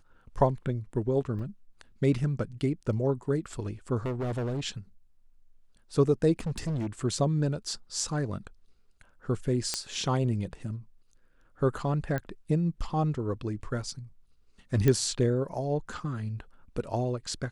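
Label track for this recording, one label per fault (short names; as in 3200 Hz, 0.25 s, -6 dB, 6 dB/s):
1.390000	1.400000	gap 5 ms
4.050000	4.610000	clipped -28 dBFS
6.390000	6.870000	clipped -27.5 dBFS
9.740000	9.740000	pop -13 dBFS
12.180000	12.180000	pop -20 dBFS
14.880000	14.880000	pop -12 dBFS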